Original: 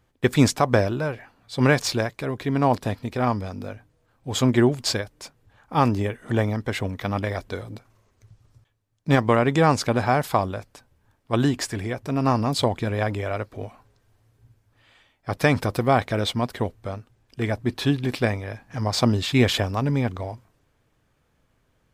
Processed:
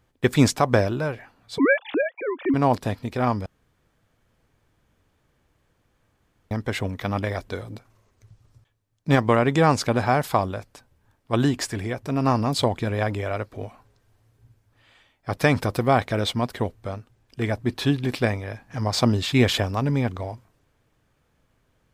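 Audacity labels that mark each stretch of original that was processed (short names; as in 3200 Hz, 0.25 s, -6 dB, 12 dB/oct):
1.580000	2.540000	sine-wave speech
3.460000	6.510000	room tone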